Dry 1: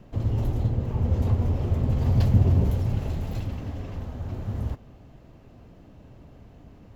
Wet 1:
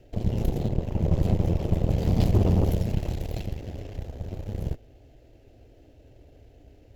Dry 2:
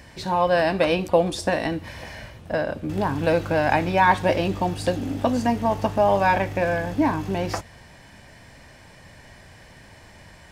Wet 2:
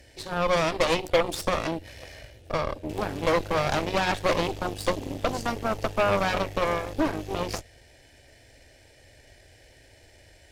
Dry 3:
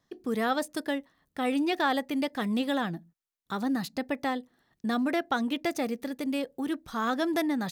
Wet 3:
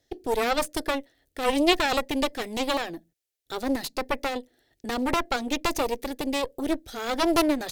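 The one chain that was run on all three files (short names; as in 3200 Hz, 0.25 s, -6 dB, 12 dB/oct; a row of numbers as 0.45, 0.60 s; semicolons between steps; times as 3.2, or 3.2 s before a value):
fixed phaser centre 450 Hz, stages 4; added harmonics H 8 -11 dB, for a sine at -8.5 dBFS; match loudness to -27 LUFS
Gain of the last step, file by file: -0.5, -3.5, +6.5 dB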